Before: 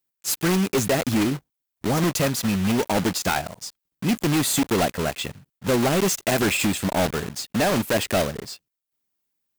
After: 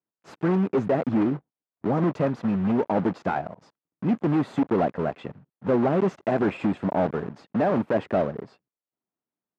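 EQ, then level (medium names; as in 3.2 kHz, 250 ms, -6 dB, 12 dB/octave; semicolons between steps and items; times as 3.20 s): high-pass 140 Hz 12 dB/octave; low-pass 1.1 kHz 12 dB/octave; 0.0 dB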